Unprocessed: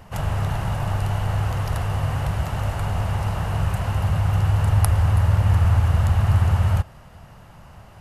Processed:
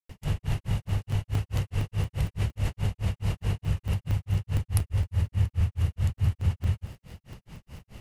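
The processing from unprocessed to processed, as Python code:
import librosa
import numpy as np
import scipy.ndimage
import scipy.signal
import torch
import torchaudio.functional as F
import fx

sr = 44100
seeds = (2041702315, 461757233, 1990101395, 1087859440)

p1 = fx.dmg_crackle(x, sr, seeds[0], per_s=95.0, level_db=-47.0)
p2 = fx.over_compress(p1, sr, threshold_db=-27.0, ratio=-1.0)
p3 = p1 + (p2 * 10.0 ** (1.5 / 20.0))
p4 = fx.band_shelf(p3, sr, hz=980.0, db=-10.5, octaves=1.7)
p5 = fx.granulator(p4, sr, seeds[1], grain_ms=183.0, per_s=4.7, spray_ms=100.0, spread_st=0)
p6 = fx.buffer_crackle(p5, sr, first_s=0.89, period_s=0.23, block=128, kind='zero')
y = p6 * 10.0 ** (-6.0 / 20.0)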